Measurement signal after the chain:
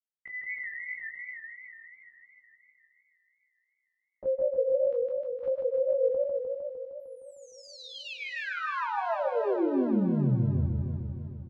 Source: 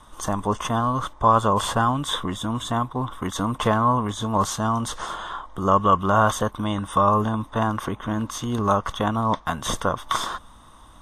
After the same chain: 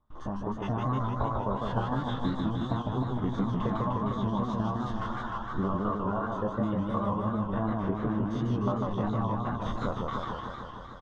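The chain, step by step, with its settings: stepped spectrum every 50 ms; gate with hold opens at -40 dBFS; reverb removal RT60 1.1 s; compressor, threshold -30 dBFS; LFO notch sine 7.5 Hz 490–2800 Hz; AGC gain up to 4 dB; tape spacing loss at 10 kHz 45 dB; doubler 15 ms -7.5 dB; thin delay 0.157 s, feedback 78%, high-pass 4400 Hz, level -10 dB; warbling echo 0.153 s, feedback 73%, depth 184 cents, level -3 dB

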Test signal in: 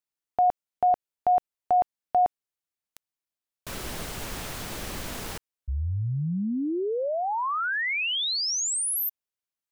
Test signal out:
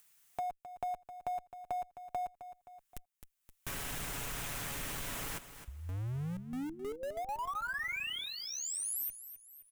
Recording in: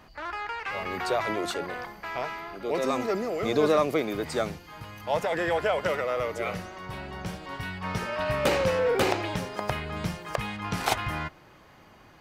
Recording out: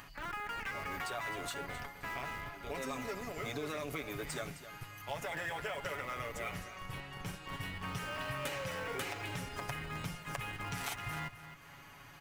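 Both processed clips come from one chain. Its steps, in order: passive tone stack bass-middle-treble 5-5-5; comb 7.1 ms, depth 70%; in parallel at -8 dB: Schmitt trigger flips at -42 dBFS; on the sum: compressor 6:1, threshold -40 dBFS; on a send: feedback echo 0.262 s, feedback 23%, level -13 dB; on the sum: upward compressor, threshold -49 dBFS; bell 4500 Hz -7 dB 0.88 oct; gain +4.5 dB

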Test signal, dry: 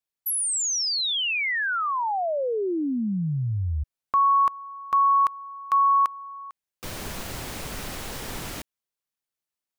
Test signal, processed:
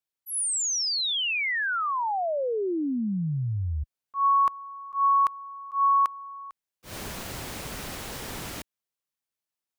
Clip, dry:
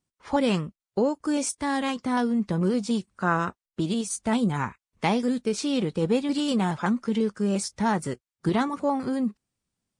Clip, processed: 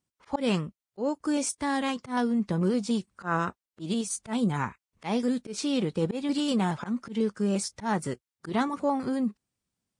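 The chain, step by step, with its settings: HPF 40 Hz 6 dB/oct; auto swell 0.123 s; gain -1.5 dB

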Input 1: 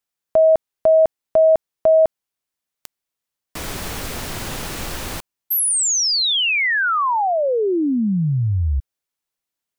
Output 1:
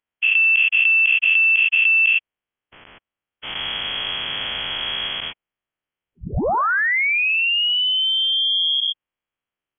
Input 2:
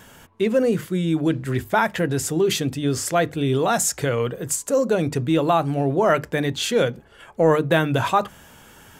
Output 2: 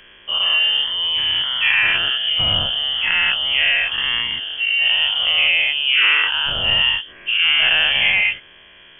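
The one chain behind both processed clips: spectral dilation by 0.24 s; inverted band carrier 3300 Hz; dynamic EQ 310 Hz, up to -4 dB, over -40 dBFS, Q 1.6; gain -3.5 dB

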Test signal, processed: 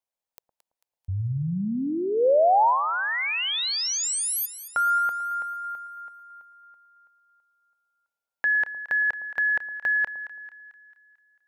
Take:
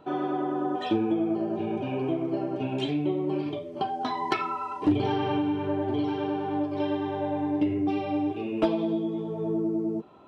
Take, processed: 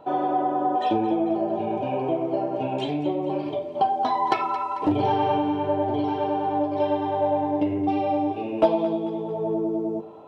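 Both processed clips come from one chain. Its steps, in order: band shelf 690 Hz +9 dB 1.2 oct; split-band echo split 1100 Hz, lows 0.111 s, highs 0.222 s, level -14 dB

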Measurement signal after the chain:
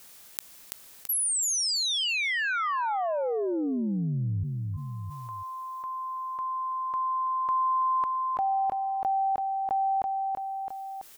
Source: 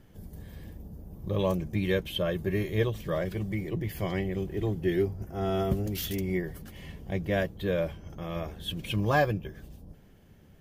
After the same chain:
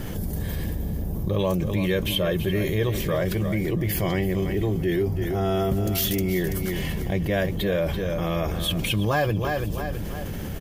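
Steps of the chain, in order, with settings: high shelf 6500 Hz +5.5 dB; feedback echo 0.332 s, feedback 22%, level -12 dB; fast leveller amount 70%

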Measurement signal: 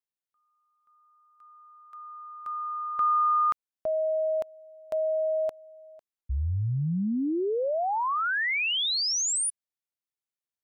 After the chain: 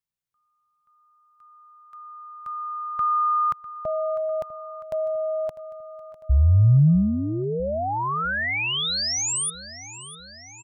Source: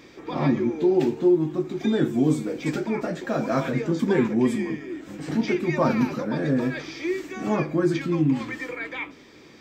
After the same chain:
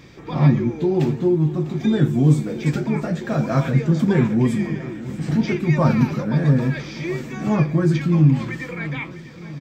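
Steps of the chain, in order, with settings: resonant low shelf 210 Hz +9 dB, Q 1.5; on a send: feedback echo 0.65 s, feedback 59%, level -16 dB; on the sum: gain +1.5 dB

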